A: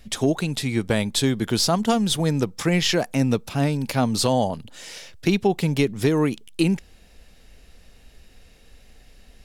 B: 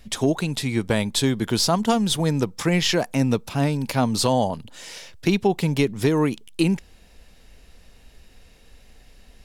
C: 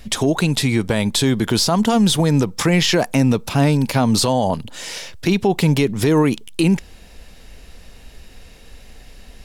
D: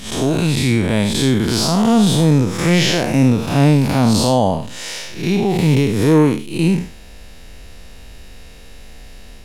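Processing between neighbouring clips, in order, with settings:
parametric band 970 Hz +4 dB 0.26 octaves
brickwall limiter −16 dBFS, peak gain reduction 9 dB; level +8.5 dB
spectrum smeared in time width 159 ms; level +5 dB

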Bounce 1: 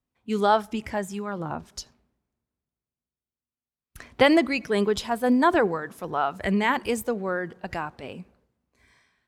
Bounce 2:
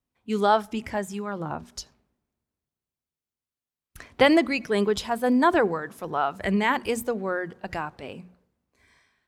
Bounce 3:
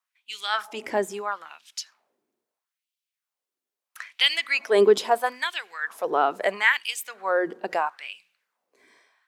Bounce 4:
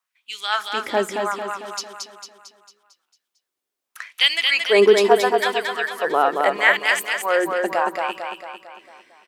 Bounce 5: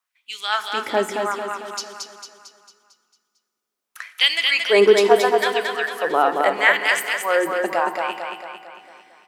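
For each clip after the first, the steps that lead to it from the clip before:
mains-hum notches 60/120/180/240 Hz
auto-filter high-pass sine 0.76 Hz 330–3,100 Hz; level +2 dB
repeating echo 225 ms, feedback 52%, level −4 dB; level +3.5 dB
convolution reverb RT60 2.1 s, pre-delay 3 ms, DRR 11.5 dB

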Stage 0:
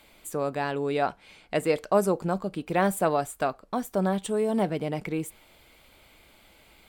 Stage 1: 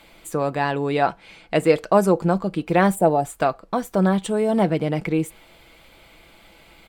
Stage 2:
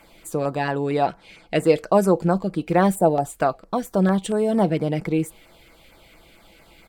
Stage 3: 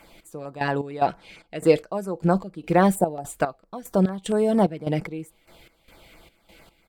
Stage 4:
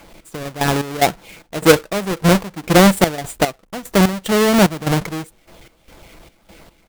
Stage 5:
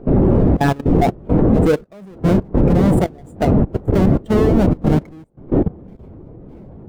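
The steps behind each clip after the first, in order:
comb filter 6 ms, depth 33%; gain on a spectral selection 0:02.95–0:03.25, 950–7,100 Hz −12 dB; high-shelf EQ 6,900 Hz −7.5 dB; level +6.5 dB
auto-filter notch saw down 4.4 Hz 750–4,100 Hz
gate pattern "x..x.xx." 74 BPM −12 dB
each half-wave held at its own peak; level +3 dB
wind on the microphone 360 Hz −14 dBFS; output level in coarse steps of 17 dB; every bin expanded away from the loudest bin 1.5 to 1; level +3.5 dB

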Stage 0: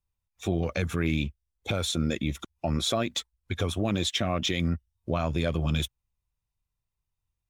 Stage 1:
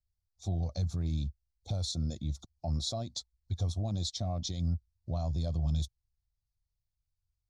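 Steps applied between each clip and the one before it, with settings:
drawn EQ curve 100 Hz 0 dB, 420 Hz −19 dB, 720 Hz −7 dB, 1,500 Hz −28 dB, 2,800 Hz −30 dB, 4,300 Hz +1 dB, 6,400 Hz −5 dB, 14,000 Hz −25 dB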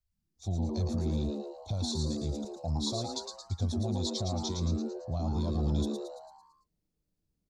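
echo with shifted repeats 112 ms, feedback 52%, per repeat +140 Hz, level −5 dB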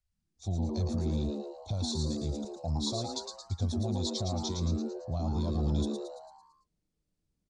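downsampling to 22,050 Hz

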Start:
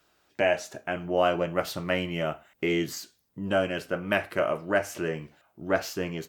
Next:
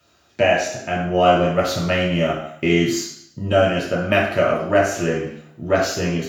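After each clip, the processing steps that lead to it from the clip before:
convolution reverb RT60 0.65 s, pre-delay 3 ms, DRR −2.5 dB
level −1 dB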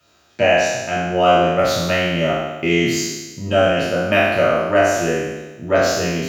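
peak hold with a decay on every bin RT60 1.17 s
low-shelf EQ 410 Hz −2.5 dB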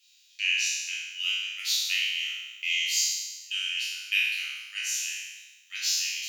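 Butterworth high-pass 2,500 Hz 36 dB per octave

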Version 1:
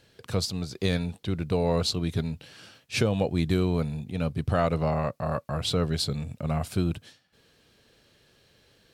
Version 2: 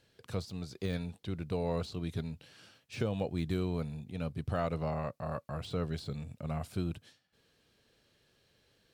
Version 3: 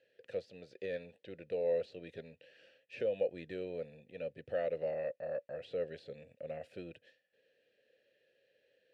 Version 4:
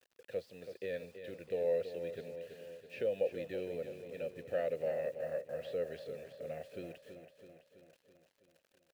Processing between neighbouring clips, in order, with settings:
de-essing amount 90%; level −8.5 dB
formant filter e; level +8 dB
bit reduction 11 bits; on a send: repeating echo 329 ms, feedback 59%, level −9.5 dB

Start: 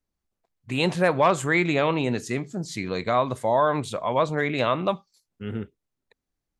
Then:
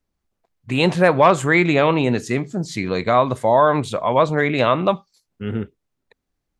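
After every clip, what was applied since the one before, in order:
high-shelf EQ 4,700 Hz −5.5 dB
level +6.5 dB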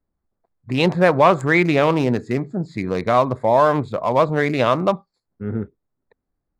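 adaptive Wiener filter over 15 samples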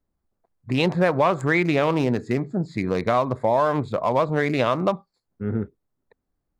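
downward compressor 2.5 to 1, threshold −18 dBFS, peak gain reduction 7 dB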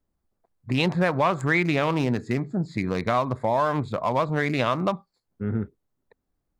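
dynamic equaliser 470 Hz, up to −5 dB, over −32 dBFS, Q 1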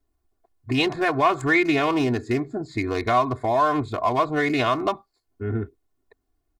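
comb filter 2.8 ms, depth 96%

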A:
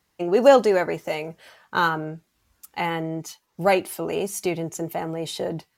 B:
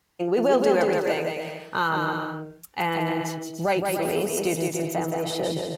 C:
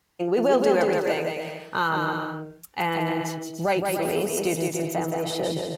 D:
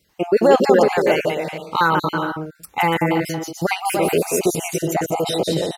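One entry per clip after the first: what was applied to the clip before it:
brickwall limiter −14 dBFS, peak gain reduction 10.5 dB; bouncing-ball delay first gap 170 ms, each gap 0.7×, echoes 5
no processing that can be heard
time-frequency cells dropped at random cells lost 30%; level +8 dB

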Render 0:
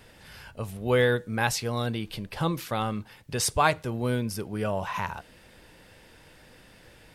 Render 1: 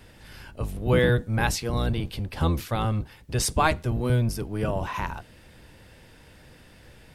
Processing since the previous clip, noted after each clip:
sub-octave generator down 1 octave, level +4 dB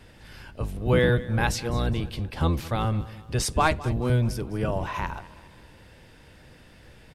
high-shelf EQ 10,000 Hz −7.5 dB
repeating echo 207 ms, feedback 46%, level −18 dB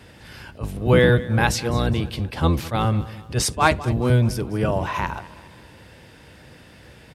high-pass filter 67 Hz
level that may rise only so fast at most 290 dB per second
level +5.5 dB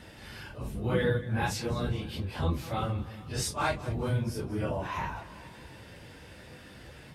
random phases in long frames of 100 ms
downward compressor 1.5 to 1, threshold −41 dBFS, peak gain reduction 11 dB
level −2 dB

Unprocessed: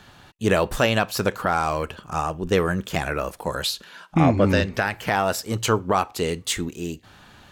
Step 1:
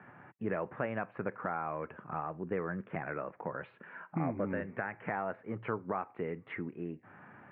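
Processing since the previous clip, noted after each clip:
Butterworth low-pass 2,200 Hz 48 dB per octave
downward compressor 2 to 1, threshold −37 dBFS, peak gain reduction 13.5 dB
high-pass filter 120 Hz 24 dB per octave
level −3.5 dB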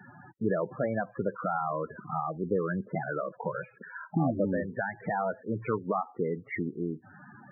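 spectral peaks only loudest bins 16
level +7 dB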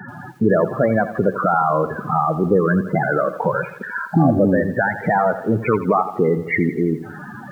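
in parallel at +2 dB: brickwall limiter −27.5 dBFS, peak gain reduction 11 dB
on the sum: feedback echo at a low word length 84 ms, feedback 55%, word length 9 bits, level −13 dB
level +9 dB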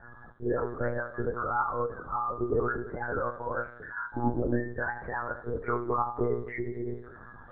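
phaser with its sweep stopped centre 690 Hz, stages 6
resonators tuned to a chord F#2 fifth, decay 0.2 s
one-pitch LPC vocoder at 8 kHz 120 Hz

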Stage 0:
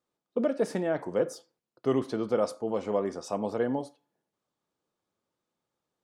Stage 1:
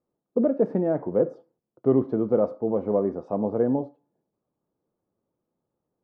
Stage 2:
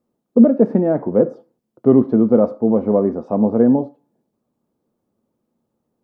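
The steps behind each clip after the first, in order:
Bessel low-pass filter 540 Hz, order 2; level +7.5 dB
parametric band 230 Hz +10 dB 0.28 octaves; level +6.5 dB

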